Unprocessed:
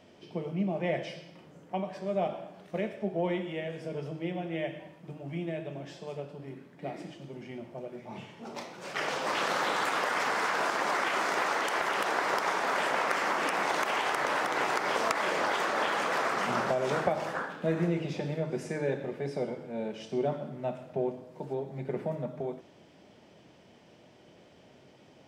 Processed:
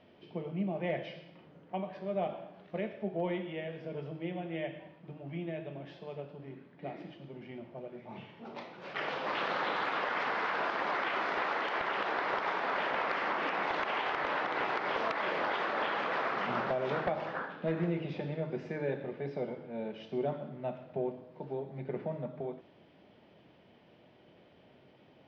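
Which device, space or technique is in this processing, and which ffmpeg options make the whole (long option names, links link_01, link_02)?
synthesiser wavefolder: -af "aeval=exprs='0.106*(abs(mod(val(0)/0.106+3,4)-2)-1)':channel_layout=same,lowpass=frequency=3900:width=0.5412,lowpass=frequency=3900:width=1.3066,lowpass=frequency=7900:width=0.5412,lowpass=frequency=7900:width=1.3066,volume=-3.5dB"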